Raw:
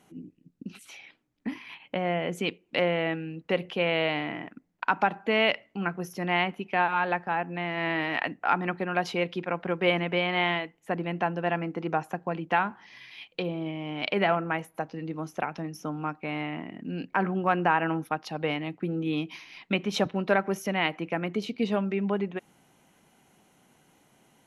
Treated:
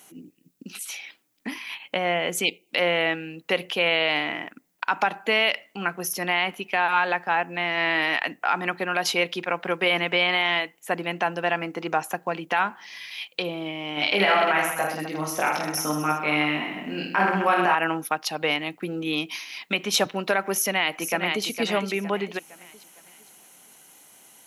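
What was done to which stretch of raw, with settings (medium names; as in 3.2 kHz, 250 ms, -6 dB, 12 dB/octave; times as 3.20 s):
2.44–2.70 s: spectral selection erased 920–2000 Hz
13.95–17.75 s: reverse bouncing-ball echo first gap 20 ms, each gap 1.3×, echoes 7, each echo -2 dB
20.53–21.45 s: echo throw 460 ms, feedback 40%, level -8 dB
whole clip: RIAA curve recording; loudness maximiser +14.5 dB; trim -9 dB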